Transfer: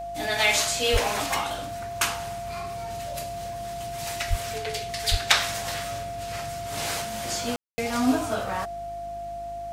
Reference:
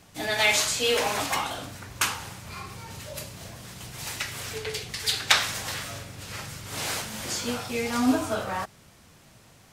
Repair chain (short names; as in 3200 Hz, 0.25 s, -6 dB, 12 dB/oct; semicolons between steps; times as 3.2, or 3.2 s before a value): de-hum 51.8 Hz, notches 7; notch 690 Hz, Q 30; 0.92–1.04 HPF 140 Hz 24 dB/oct; 4.29–4.41 HPF 140 Hz 24 dB/oct; 5.1–5.22 HPF 140 Hz 24 dB/oct; room tone fill 7.56–7.78